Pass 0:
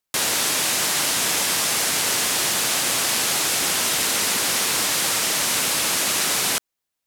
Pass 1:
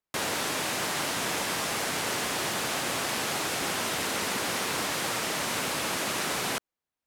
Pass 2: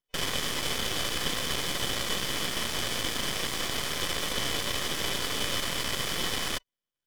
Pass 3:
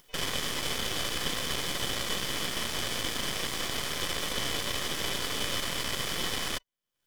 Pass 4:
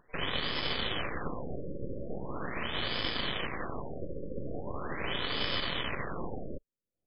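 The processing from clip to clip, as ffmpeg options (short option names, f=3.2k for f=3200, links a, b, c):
-af "highshelf=f=2.8k:g=-12,volume=-2dB"
-af "superequalizer=7b=1.41:8b=0.501:10b=0.251:11b=2.82:13b=1.78,aeval=exprs='val(0)*sin(2*PI*1500*n/s)':c=same,aeval=exprs='max(val(0),0)':c=same,volume=3.5dB"
-af "acompressor=mode=upward:threshold=-36dB:ratio=2.5,volume=-1.5dB"
-af "afftfilt=real='re*lt(b*sr/1024,560*pow(5300/560,0.5+0.5*sin(2*PI*0.41*pts/sr)))':imag='im*lt(b*sr/1024,560*pow(5300/560,0.5+0.5*sin(2*PI*0.41*pts/sr)))':win_size=1024:overlap=0.75"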